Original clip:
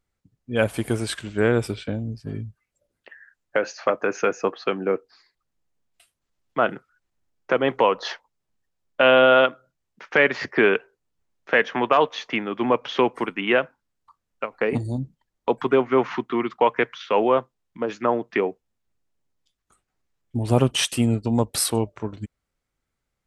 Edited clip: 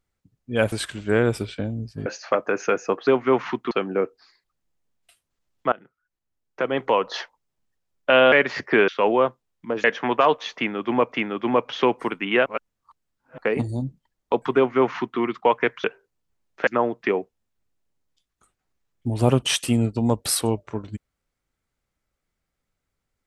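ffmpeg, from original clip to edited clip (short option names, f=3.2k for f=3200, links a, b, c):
-filter_complex "[0:a]asplit=14[a][b][c][d][e][f][g][h][i][j][k][l][m][n];[a]atrim=end=0.722[o];[b]atrim=start=1.008:end=2.352[p];[c]atrim=start=3.608:end=4.622[q];[d]atrim=start=15.718:end=16.362[r];[e]atrim=start=4.618:end=6.63,asetpts=PTS-STARTPTS,afade=t=out:st=2.008:d=0.004:c=hsin:silence=0.0749894[s];[f]atrim=start=6.63:end=9.232,asetpts=PTS-STARTPTS,afade=t=in:d=1.49:silence=0.0749894[t];[g]atrim=start=10.168:end=10.732[u];[h]atrim=start=16.998:end=17.962[v];[i]atrim=start=11.558:end=12.842[w];[j]atrim=start=12.278:end=13.622[x];[k]atrim=start=13.618:end=14.542,asetpts=PTS-STARTPTS,areverse[y];[l]atrim=start=14.538:end=17.002[z];[m]atrim=start=10.728:end=11.562[aa];[n]atrim=start=17.958[ab];[o][p]acrossfade=d=0.004:c1=hsin:c2=hsin[ac];[ac][q]acrossfade=d=0.004:c1=hsin:c2=hsin[ad];[ad][r]acrossfade=d=0.004:c1=hsin:c2=hsin[ae];[s][t]concat=n=2:v=0:a=1[af];[ae][af]acrossfade=d=0.004:c1=hsin:c2=hsin[ag];[ag][u]acrossfade=d=0.004:c1=hsin:c2=hsin[ah];[ah][v]acrossfade=d=0.004:c1=hsin:c2=hsin[ai];[ai][w]acrossfade=d=0.004:c1=hsin:c2=hsin[aj];[aj][x]acrossfade=d=0.004:c1=hsin:c2=hsin[ak];[ak][y]acrossfade=d=0.004:c1=hsin:c2=hsin[al];[al][z]acrossfade=d=0.004:c1=hsin:c2=hsin[am];[am][aa]acrossfade=d=0.004:c1=hsin:c2=hsin[an];[an][ab]acrossfade=d=0.004:c1=hsin:c2=hsin"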